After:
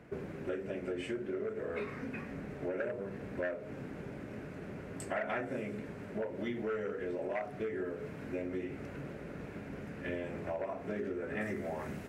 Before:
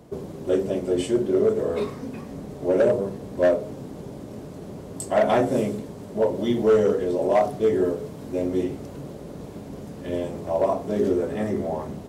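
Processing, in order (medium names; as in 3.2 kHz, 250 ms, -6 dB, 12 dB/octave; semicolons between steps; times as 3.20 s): treble shelf 4.9 kHz -9.5 dB, from 11.41 s +4.5 dB; compression 12:1, threshold -27 dBFS, peak gain reduction 13 dB; high-order bell 1.9 kHz +13 dB 1.2 oct; trim -7 dB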